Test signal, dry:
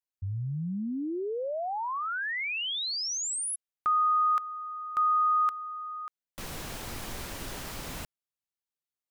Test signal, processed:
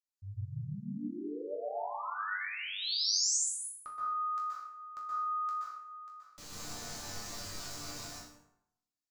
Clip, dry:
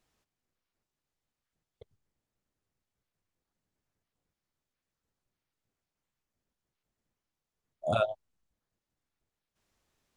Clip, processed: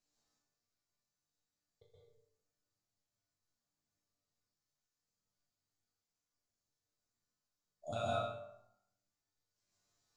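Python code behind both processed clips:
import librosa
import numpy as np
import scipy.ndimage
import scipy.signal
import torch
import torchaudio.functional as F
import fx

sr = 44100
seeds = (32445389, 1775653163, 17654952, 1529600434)

y = fx.band_shelf(x, sr, hz=5600.0, db=10.0, octaves=1.1)
y = fx.resonator_bank(y, sr, root=43, chord='minor', decay_s=0.47)
y = fx.rev_plate(y, sr, seeds[0], rt60_s=0.79, hf_ratio=0.55, predelay_ms=115, drr_db=-4.0)
y = F.gain(torch.from_numpy(y), 3.0).numpy()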